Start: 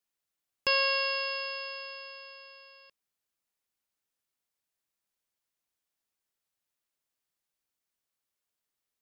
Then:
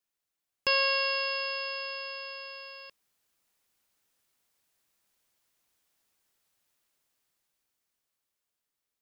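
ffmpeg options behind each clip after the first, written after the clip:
ffmpeg -i in.wav -af "dynaudnorm=framelen=330:gausssize=13:maxgain=11dB" out.wav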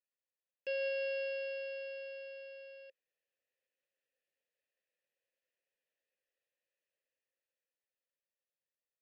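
ffmpeg -i in.wav -filter_complex "[0:a]alimiter=limit=-19dB:level=0:latency=1:release=180,asplit=3[link_01][link_02][link_03];[link_01]bandpass=frequency=530:width_type=q:width=8,volume=0dB[link_04];[link_02]bandpass=frequency=1840:width_type=q:width=8,volume=-6dB[link_05];[link_03]bandpass=frequency=2480:width_type=q:width=8,volume=-9dB[link_06];[link_04][link_05][link_06]amix=inputs=3:normalize=0,volume=1dB" out.wav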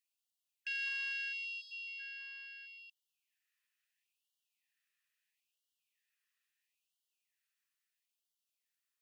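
ffmpeg -i in.wav -filter_complex "[0:a]asplit=2[link_01][link_02];[link_02]asoftclip=type=tanh:threshold=-38dB,volume=-5.5dB[link_03];[link_01][link_03]amix=inputs=2:normalize=0,afftfilt=real='re*gte(b*sr/1024,980*pow(2800/980,0.5+0.5*sin(2*PI*0.75*pts/sr)))':imag='im*gte(b*sr/1024,980*pow(2800/980,0.5+0.5*sin(2*PI*0.75*pts/sr)))':win_size=1024:overlap=0.75,volume=3dB" out.wav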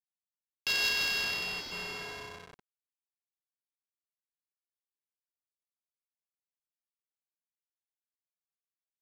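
ffmpeg -i in.wav -af "aexciter=amount=11.3:drive=4.1:freq=3600,acrusher=bits=5:mix=0:aa=0.000001,adynamicsmooth=sensitivity=3.5:basefreq=1400,volume=6dB" out.wav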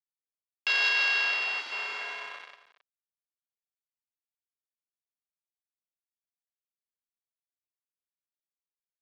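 ffmpeg -i in.wav -af "aeval=exprs='val(0)*gte(abs(val(0)),0.00891)':channel_layout=same,highpass=750,lowpass=2900,aecho=1:1:269:0.168,volume=8dB" out.wav

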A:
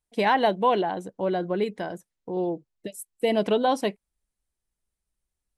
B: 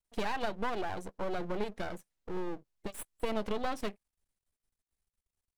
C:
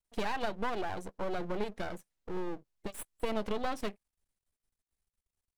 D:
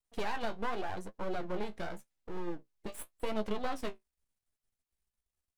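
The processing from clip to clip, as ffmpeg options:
ffmpeg -i in.wav -af "acompressor=threshold=-26dB:ratio=6,aeval=exprs='max(val(0),0)':channel_layout=same" out.wav
ffmpeg -i in.wav -af anull out.wav
ffmpeg -i in.wav -af "flanger=delay=9.2:depth=9.4:regen=41:speed=0.87:shape=sinusoidal,volume=2dB" out.wav

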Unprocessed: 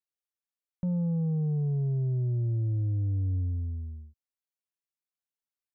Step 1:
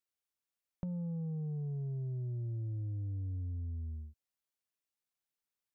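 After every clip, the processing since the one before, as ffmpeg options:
ffmpeg -i in.wav -af "acompressor=threshold=-39dB:ratio=6,volume=1dB" out.wav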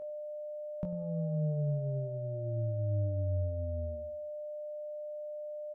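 ffmpeg -i in.wav -filter_complex "[0:a]aeval=exprs='val(0)+0.00708*sin(2*PI*600*n/s)':channel_layout=same,asplit=2[link_01][link_02];[link_02]adelay=20,volume=-7dB[link_03];[link_01][link_03]amix=inputs=2:normalize=0,asplit=2[link_04][link_05];[link_05]adelay=96,lowpass=frequency=880:poles=1,volume=-14dB,asplit=2[link_06][link_07];[link_07]adelay=96,lowpass=frequency=880:poles=1,volume=0.43,asplit=2[link_08][link_09];[link_09]adelay=96,lowpass=frequency=880:poles=1,volume=0.43,asplit=2[link_10][link_11];[link_11]adelay=96,lowpass=frequency=880:poles=1,volume=0.43[link_12];[link_04][link_06][link_08][link_10][link_12]amix=inputs=5:normalize=0,volume=2.5dB" out.wav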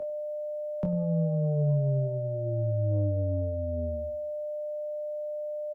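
ffmpeg -i in.wav -filter_complex "[0:a]acrossover=split=160|230[link_01][link_02][link_03];[link_01]asoftclip=type=tanh:threshold=-38.5dB[link_04];[link_04][link_02][link_03]amix=inputs=3:normalize=0,asplit=2[link_05][link_06];[link_06]adelay=29,volume=-11.5dB[link_07];[link_05][link_07]amix=inputs=2:normalize=0,volume=8.5dB" out.wav

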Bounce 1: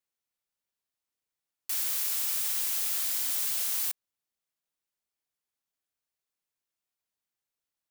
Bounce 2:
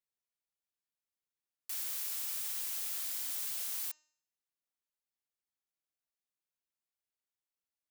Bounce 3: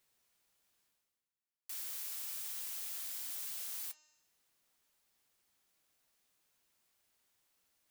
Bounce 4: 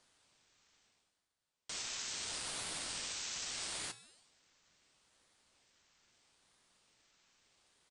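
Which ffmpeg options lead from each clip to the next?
ffmpeg -i in.wav -af "bandreject=frequency=305.6:width_type=h:width=4,bandreject=frequency=611.2:width_type=h:width=4,bandreject=frequency=916.8:width_type=h:width=4,bandreject=frequency=1222.4:width_type=h:width=4,bandreject=frequency=1528:width_type=h:width=4,bandreject=frequency=1833.6:width_type=h:width=4,bandreject=frequency=2139.2:width_type=h:width=4,bandreject=frequency=2444.8:width_type=h:width=4,bandreject=frequency=2750.4:width_type=h:width=4,bandreject=frequency=3056:width_type=h:width=4,bandreject=frequency=3361.6:width_type=h:width=4,bandreject=frequency=3667.2:width_type=h:width=4,bandreject=frequency=3972.8:width_type=h:width=4,bandreject=frequency=4278.4:width_type=h:width=4,bandreject=frequency=4584:width_type=h:width=4,bandreject=frequency=4889.6:width_type=h:width=4,bandreject=frequency=5195.2:width_type=h:width=4,bandreject=frequency=5500.8:width_type=h:width=4,bandreject=frequency=5806.4:width_type=h:width=4,bandreject=frequency=6112:width_type=h:width=4,bandreject=frequency=6417.6:width_type=h:width=4,bandreject=frequency=6723.2:width_type=h:width=4,bandreject=frequency=7028.8:width_type=h:width=4,bandreject=frequency=7334.4:width_type=h:width=4,bandreject=frequency=7640:width_type=h:width=4,volume=-8dB" out.wav
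ffmpeg -i in.wav -af "areverse,acompressor=mode=upward:threshold=-56dB:ratio=2.5,areverse,flanger=delay=7.9:depth=2.5:regen=-68:speed=1.5:shape=sinusoidal" out.wav
ffmpeg -i in.wav -af "highpass=380,aresample=16000,aresample=44100,aeval=exprs='val(0)*sin(2*PI*1600*n/s+1600*0.65/0.76*sin(2*PI*0.76*n/s))':channel_layout=same,volume=12.5dB" out.wav

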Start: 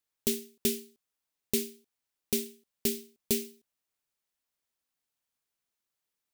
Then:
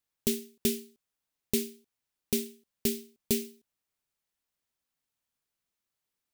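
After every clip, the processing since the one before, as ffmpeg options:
ffmpeg -i in.wav -af "bass=frequency=250:gain=4,treble=frequency=4000:gain=-1" out.wav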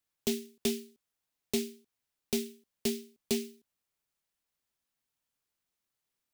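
ffmpeg -i in.wav -filter_complex "[0:a]acrossover=split=250|1100|7200[link_01][link_02][link_03][link_04];[link_01]asoftclip=type=hard:threshold=-35.5dB[link_05];[link_04]alimiter=level_in=3.5dB:limit=-24dB:level=0:latency=1:release=387,volume=-3.5dB[link_06];[link_05][link_02][link_03][link_06]amix=inputs=4:normalize=0" out.wav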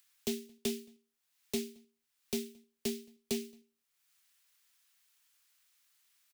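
ffmpeg -i in.wav -filter_complex "[0:a]acrossover=split=190|1200[link_01][link_02][link_03];[link_03]acompressor=mode=upward:threshold=-51dB:ratio=2.5[link_04];[link_01][link_02][link_04]amix=inputs=3:normalize=0,asplit=2[link_05][link_06];[link_06]adelay=221.6,volume=-28dB,highshelf=frequency=4000:gain=-4.99[link_07];[link_05][link_07]amix=inputs=2:normalize=0,volume=-4dB" out.wav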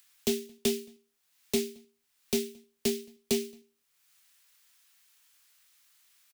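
ffmpeg -i in.wav -filter_complex "[0:a]asplit=2[link_01][link_02];[link_02]adelay=20,volume=-12dB[link_03];[link_01][link_03]amix=inputs=2:normalize=0,volume=6.5dB" out.wav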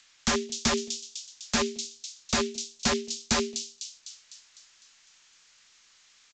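ffmpeg -i in.wav -filter_complex "[0:a]acrossover=split=220|3900[link_01][link_02][link_03];[link_02]aeval=exprs='(mod(29.9*val(0)+1,2)-1)/29.9':channel_layout=same[link_04];[link_03]aecho=1:1:252|504|756|1008|1260|1512|1764|2016:0.668|0.374|0.21|0.117|0.0657|0.0368|0.0206|0.0115[link_05];[link_01][link_04][link_05]amix=inputs=3:normalize=0,volume=8.5dB" -ar 16000 -c:a pcm_alaw out.wav

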